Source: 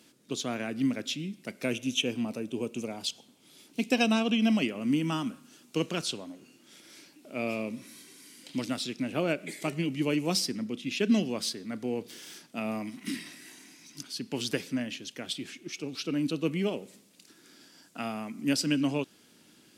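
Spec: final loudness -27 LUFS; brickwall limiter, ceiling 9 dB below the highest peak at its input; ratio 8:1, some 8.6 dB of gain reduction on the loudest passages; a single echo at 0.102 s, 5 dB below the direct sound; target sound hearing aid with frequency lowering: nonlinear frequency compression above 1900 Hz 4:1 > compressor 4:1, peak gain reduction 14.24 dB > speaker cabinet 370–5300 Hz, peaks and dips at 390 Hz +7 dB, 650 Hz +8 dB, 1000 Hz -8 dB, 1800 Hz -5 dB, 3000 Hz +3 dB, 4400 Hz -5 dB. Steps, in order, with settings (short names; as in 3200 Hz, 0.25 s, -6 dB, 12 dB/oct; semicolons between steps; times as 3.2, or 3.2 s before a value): compressor 8:1, threshold -28 dBFS; limiter -26.5 dBFS; echo 0.102 s -5 dB; nonlinear frequency compression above 1900 Hz 4:1; compressor 4:1, threshold -45 dBFS; speaker cabinet 370–5300 Hz, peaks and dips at 390 Hz +7 dB, 650 Hz +8 dB, 1000 Hz -8 dB, 1800 Hz -5 dB, 3000 Hz +3 dB, 4400 Hz -5 dB; gain +20 dB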